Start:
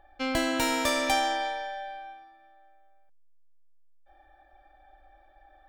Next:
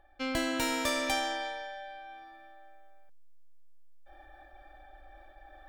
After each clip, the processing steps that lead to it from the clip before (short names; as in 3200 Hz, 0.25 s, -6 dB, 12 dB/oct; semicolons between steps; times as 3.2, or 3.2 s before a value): bell 790 Hz -4 dB 0.5 oct; reverse; upward compressor, threshold -38 dBFS; reverse; gain -3.5 dB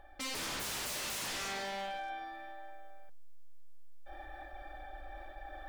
limiter -26 dBFS, peak gain reduction 8 dB; wavefolder -40 dBFS; flange 1.1 Hz, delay 1.3 ms, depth 5.4 ms, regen -88%; gain +10.5 dB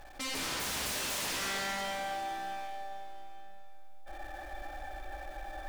zero-crossing step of -51 dBFS; reverb RT60 3.5 s, pre-delay 79 ms, DRR 2.5 dB; gain +1 dB